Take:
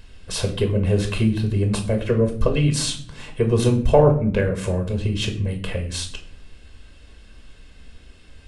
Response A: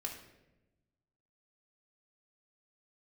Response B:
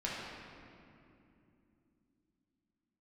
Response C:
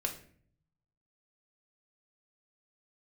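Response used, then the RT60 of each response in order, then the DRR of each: C; 1.0 s, 2.8 s, 0.55 s; -0.5 dB, -7.0 dB, 3.5 dB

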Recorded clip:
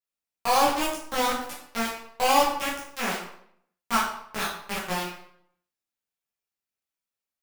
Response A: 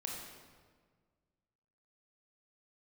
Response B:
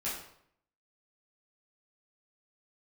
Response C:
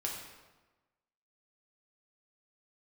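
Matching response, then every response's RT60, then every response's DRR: B; 1.6 s, 0.65 s, 1.2 s; -1.5 dB, -9.5 dB, -2.0 dB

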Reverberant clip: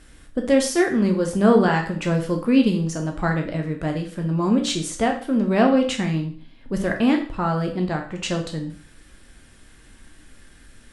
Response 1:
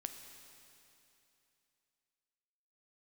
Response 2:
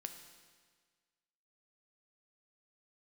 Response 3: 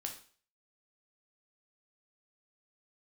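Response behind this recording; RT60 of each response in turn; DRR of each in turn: 3; 2.9 s, 1.6 s, 0.45 s; 6.0 dB, 6.0 dB, 2.5 dB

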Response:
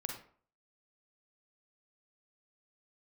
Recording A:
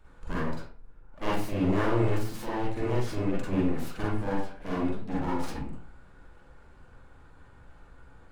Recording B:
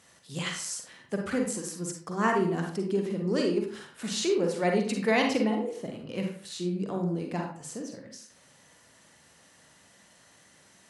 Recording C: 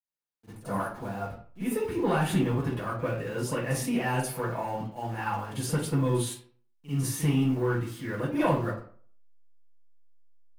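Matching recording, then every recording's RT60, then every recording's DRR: B; 0.50 s, 0.50 s, 0.50 s; -7.0 dB, 1.5 dB, -16.0 dB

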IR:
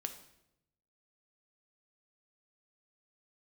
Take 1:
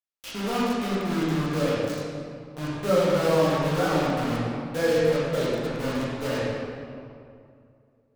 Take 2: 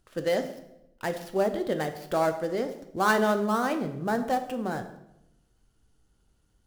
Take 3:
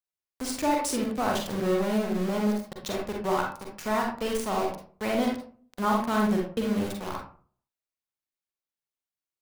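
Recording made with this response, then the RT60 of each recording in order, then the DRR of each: 2; 2.4 s, 0.85 s, 0.45 s; -8.5 dB, 6.5 dB, -0.5 dB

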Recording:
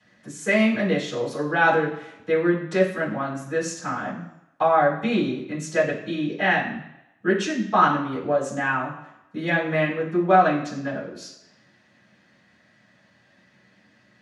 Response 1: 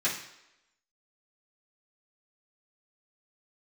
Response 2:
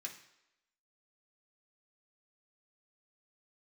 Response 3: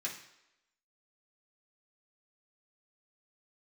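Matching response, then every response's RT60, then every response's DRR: 1; no single decay rate, no single decay rate, no single decay rate; -11.0 dB, -0.5 dB, -5.0 dB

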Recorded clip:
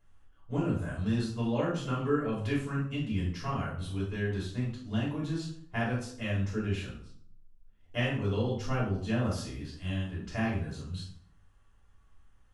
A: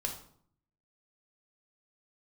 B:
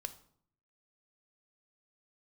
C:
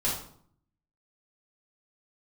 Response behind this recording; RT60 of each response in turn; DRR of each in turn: C; 0.60 s, 0.60 s, 0.60 s; 1.5 dB, 10.0 dB, -7.0 dB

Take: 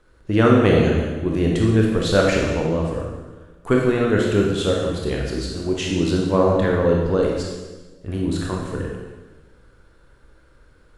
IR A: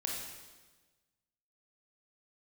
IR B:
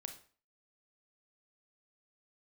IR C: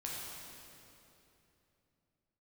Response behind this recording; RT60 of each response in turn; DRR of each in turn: A; 1.3 s, 0.40 s, 3.0 s; -1.5 dB, 6.0 dB, -5.0 dB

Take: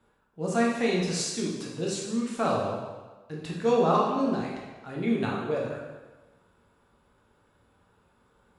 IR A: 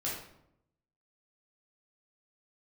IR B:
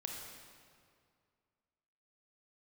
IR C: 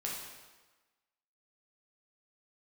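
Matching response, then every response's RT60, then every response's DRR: C; 0.75 s, 2.2 s, 1.2 s; -7.0 dB, 0.0 dB, -4.0 dB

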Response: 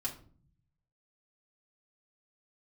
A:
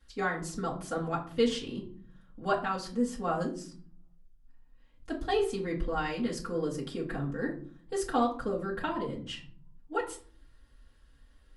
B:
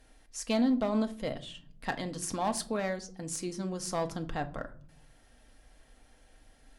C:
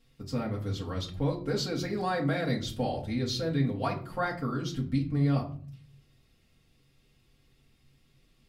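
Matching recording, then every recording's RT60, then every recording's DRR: C; 0.45 s, 0.50 s, 0.45 s; -7.5 dB, 6.5 dB, -3.0 dB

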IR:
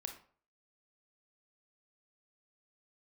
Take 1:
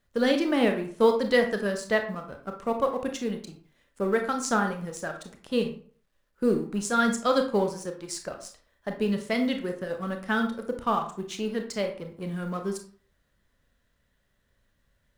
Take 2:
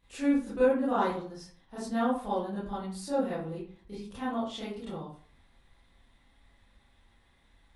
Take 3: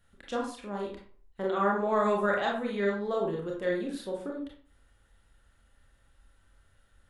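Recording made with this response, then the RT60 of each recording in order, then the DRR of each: 1; 0.45 s, 0.45 s, 0.45 s; 4.5 dB, -11.5 dB, -2.0 dB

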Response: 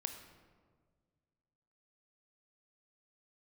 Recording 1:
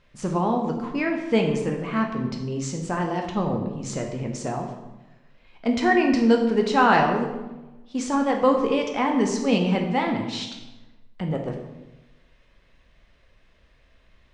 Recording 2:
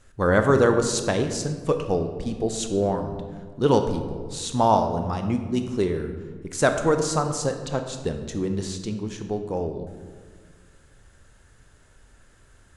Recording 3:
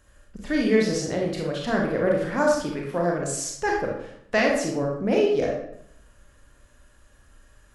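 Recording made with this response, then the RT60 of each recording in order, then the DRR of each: 2; 1.0 s, 1.7 s, 0.70 s; 1.5 dB, 6.0 dB, -1.5 dB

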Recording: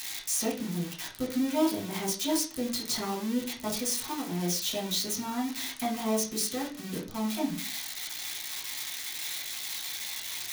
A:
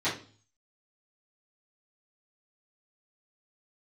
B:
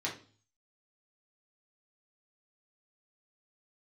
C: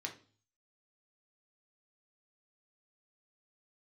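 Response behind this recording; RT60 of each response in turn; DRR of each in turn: B; 0.40 s, 0.40 s, 0.40 s; -14.0 dB, -4.5 dB, 1.5 dB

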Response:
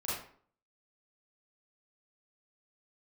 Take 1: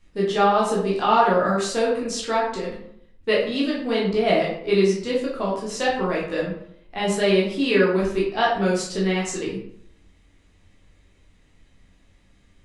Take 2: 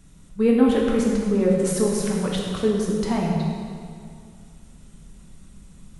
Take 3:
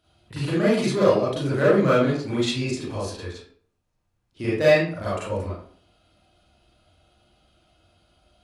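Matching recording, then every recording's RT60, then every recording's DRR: 3; 0.70 s, 2.2 s, 0.50 s; -5.5 dB, -2.5 dB, -9.5 dB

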